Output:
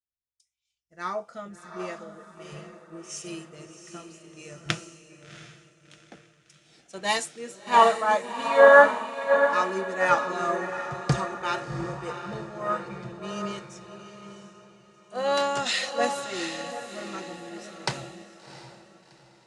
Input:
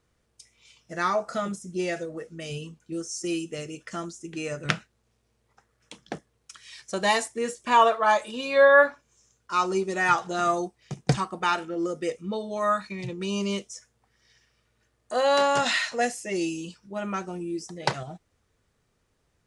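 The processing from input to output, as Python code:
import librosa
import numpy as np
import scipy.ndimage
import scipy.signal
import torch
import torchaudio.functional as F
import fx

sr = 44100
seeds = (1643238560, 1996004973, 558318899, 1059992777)

y = fx.echo_diffused(x, sr, ms=710, feedback_pct=61, wet_db=-4.0)
y = fx.band_widen(y, sr, depth_pct=100)
y = y * 10.0 ** (-6.0 / 20.0)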